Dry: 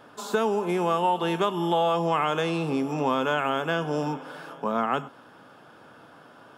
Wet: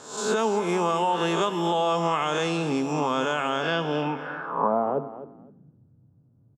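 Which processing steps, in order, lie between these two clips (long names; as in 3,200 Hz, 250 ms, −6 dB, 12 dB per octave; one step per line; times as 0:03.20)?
peak hold with a rise ahead of every peak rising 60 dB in 0.58 s
brickwall limiter −15 dBFS, peak gain reduction 4.5 dB
low-pass filter sweep 7,200 Hz → 110 Hz, 0:03.49–0:05.86
on a send: repeating echo 258 ms, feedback 18%, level −14 dB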